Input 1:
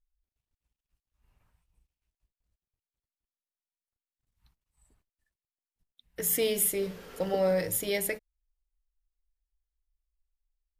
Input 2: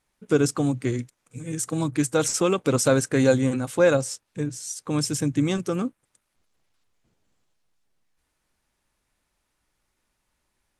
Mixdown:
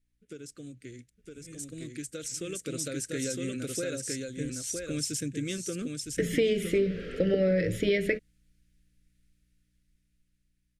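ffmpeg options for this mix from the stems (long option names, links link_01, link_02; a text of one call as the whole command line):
ffmpeg -i stem1.wav -i stem2.wav -filter_complex "[0:a]lowpass=2400,volume=1dB[link_01];[1:a]lowshelf=frequency=400:gain=-8,acompressor=threshold=-26dB:ratio=6,aeval=exprs='val(0)+0.000501*(sin(2*PI*60*n/s)+sin(2*PI*2*60*n/s)/2+sin(2*PI*3*60*n/s)/3+sin(2*PI*4*60*n/s)/4+sin(2*PI*5*60*n/s)/5)':channel_layout=same,volume=-13dB,asplit=2[link_02][link_03];[link_03]volume=-4.5dB,aecho=0:1:961:1[link_04];[link_01][link_02][link_04]amix=inputs=3:normalize=0,dynaudnorm=framelen=380:gausssize=13:maxgain=11.5dB,asuperstop=centerf=910:order=4:qfactor=0.74,acompressor=threshold=-22dB:ratio=6" out.wav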